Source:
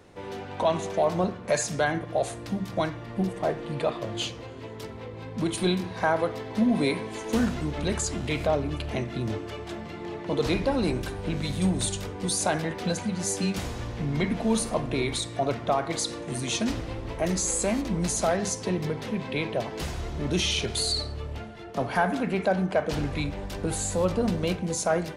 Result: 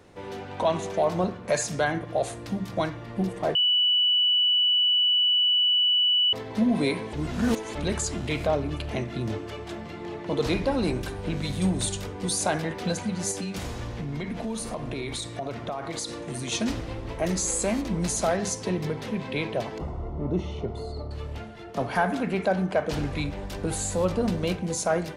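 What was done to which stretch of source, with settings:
3.55–6.33 bleep 2960 Hz -18.5 dBFS
7.13–7.75 reverse
13.31–16.52 compressor, threshold -28 dBFS
19.78–21.11 polynomial smoothing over 65 samples

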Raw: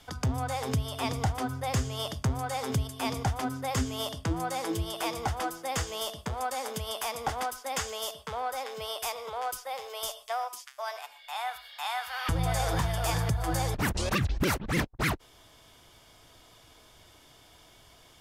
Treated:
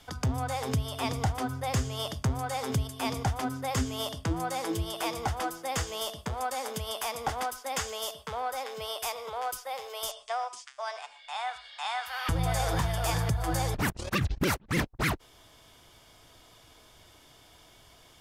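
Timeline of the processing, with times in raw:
10.11–12.06 steep low-pass 9000 Hz 48 dB/oct
13.9–14.71 gate -29 dBFS, range -19 dB

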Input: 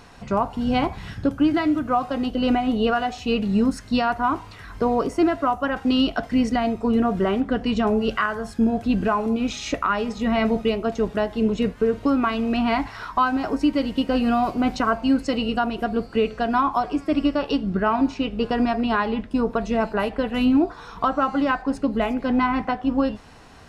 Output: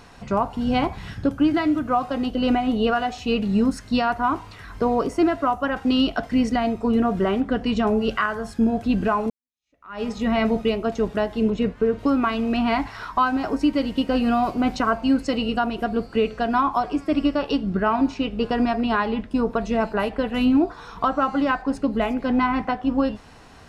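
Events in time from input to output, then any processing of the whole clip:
9.3–10.03 fade in exponential
11.5–11.99 LPF 3300 Hz 6 dB/oct

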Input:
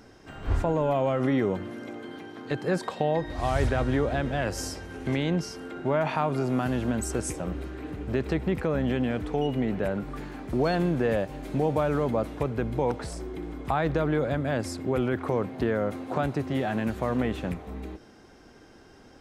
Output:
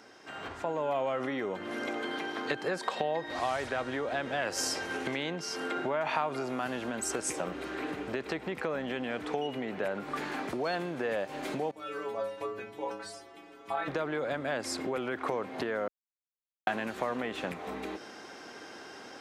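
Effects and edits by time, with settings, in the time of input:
11.71–13.88 metallic resonator 100 Hz, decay 0.72 s, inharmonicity 0.008
15.88–16.67 mute
whole clip: compressor 6:1, threshold -35 dBFS; weighting filter A; AGC gain up to 8.5 dB; gain +1 dB

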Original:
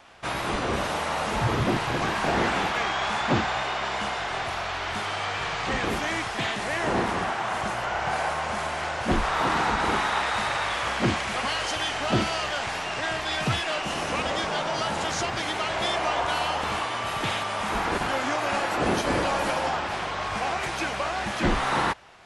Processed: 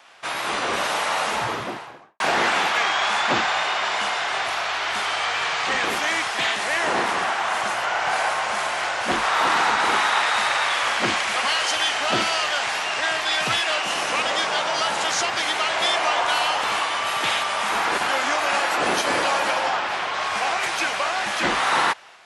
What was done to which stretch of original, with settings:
1.2–2.2 studio fade out
19.38–20.13 high shelf 9700 Hz -> 6400 Hz -9.5 dB
whole clip: AGC gain up to 3.5 dB; HPF 940 Hz 6 dB/oct; gain +4 dB

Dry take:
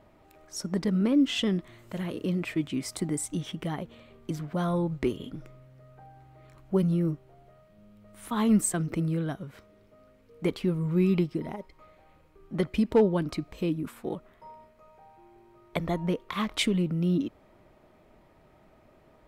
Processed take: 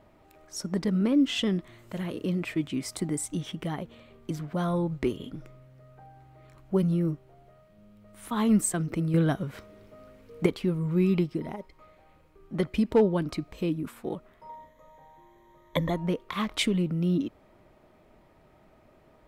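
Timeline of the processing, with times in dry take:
9.14–10.46 gain +7 dB
14.49–15.9 ripple EQ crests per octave 1.1, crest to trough 15 dB

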